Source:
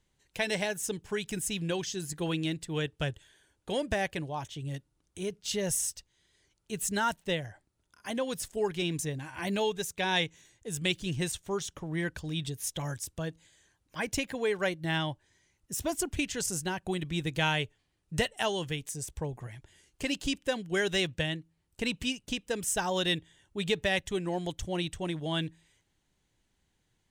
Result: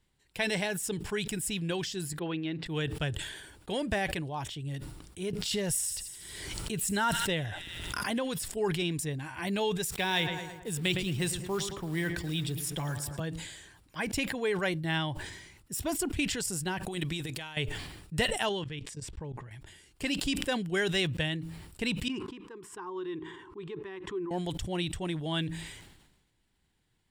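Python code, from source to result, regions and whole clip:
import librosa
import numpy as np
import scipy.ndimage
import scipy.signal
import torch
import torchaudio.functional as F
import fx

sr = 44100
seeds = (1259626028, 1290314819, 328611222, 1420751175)

y = fx.chain(x, sr, fx.highpass(hz=200.0, slope=12),
    fx.air_absorb(metres=280.0), at=(2.19, 2.66))
y = fx.chain(y, sr, fx.echo_wet_highpass(ms=78, feedback_pct=58, hz=2600.0, wet_db=-18.5),
    fx.pre_swell(db_per_s=29.0), at=(5.33, 8.46))
y = fx.chain(y, sr, fx.quant_companded(bits=6),
    fx.echo_filtered(ms=110, feedback_pct=58, hz=2500.0, wet_db=-13),
    fx.band_squash(depth_pct=40), at=(9.91, 13.2))
y = fx.chain(y, sr, fx.bass_treble(bass_db=-6, treble_db=5),
    fx.over_compress(threshold_db=-36.0, ratio=-0.5), at=(16.83, 17.57))
y = fx.chain(y, sr, fx.lowpass(hz=4900.0, slope=12),
    fx.notch(hz=730.0, q=8.9),
    fx.level_steps(step_db=19), at=(18.49, 19.51))
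y = fx.chain(y, sr, fx.double_bandpass(hz=620.0, octaves=1.5),
    fx.pre_swell(db_per_s=110.0), at=(22.08, 24.31))
y = fx.peak_eq(y, sr, hz=560.0, db=-3.5, octaves=0.5)
y = fx.notch(y, sr, hz=6300.0, q=5.3)
y = fx.sustainer(y, sr, db_per_s=50.0)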